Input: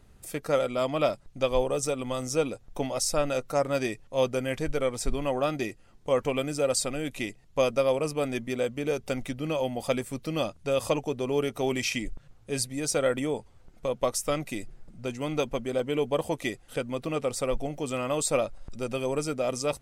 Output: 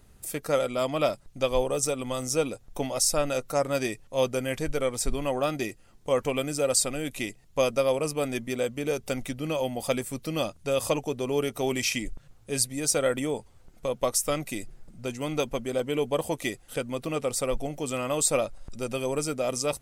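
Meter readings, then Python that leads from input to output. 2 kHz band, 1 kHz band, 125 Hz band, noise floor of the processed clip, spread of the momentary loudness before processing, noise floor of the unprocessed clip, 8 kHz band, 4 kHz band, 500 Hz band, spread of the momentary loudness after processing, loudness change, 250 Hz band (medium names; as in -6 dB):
+1.0 dB, 0.0 dB, 0.0 dB, -55 dBFS, 8 LU, -55 dBFS, +5.0 dB, +2.0 dB, 0.0 dB, 9 LU, +1.0 dB, 0.0 dB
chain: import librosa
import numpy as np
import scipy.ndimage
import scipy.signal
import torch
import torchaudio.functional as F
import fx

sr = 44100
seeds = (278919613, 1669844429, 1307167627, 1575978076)

y = fx.high_shelf(x, sr, hz=6900.0, db=9.0)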